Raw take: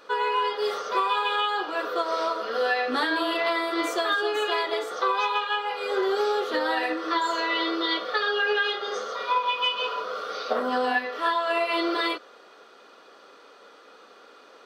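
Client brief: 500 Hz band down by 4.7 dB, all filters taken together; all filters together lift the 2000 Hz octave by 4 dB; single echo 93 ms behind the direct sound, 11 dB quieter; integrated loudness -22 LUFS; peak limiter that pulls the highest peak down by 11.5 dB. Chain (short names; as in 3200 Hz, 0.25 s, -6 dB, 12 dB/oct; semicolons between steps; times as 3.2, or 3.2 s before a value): bell 500 Hz -6.5 dB; bell 2000 Hz +5.5 dB; limiter -22.5 dBFS; echo 93 ms -11 dB; gain +7.5 dB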